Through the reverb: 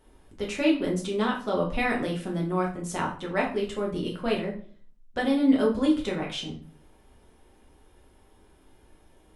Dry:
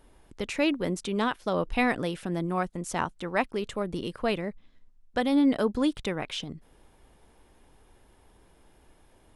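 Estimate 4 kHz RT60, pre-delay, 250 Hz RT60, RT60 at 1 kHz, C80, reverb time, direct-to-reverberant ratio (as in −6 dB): 0.35 s, 4 ms, 0.55 s, 0.40 s, 13.0 dB, 0.45 s, −2.5 dB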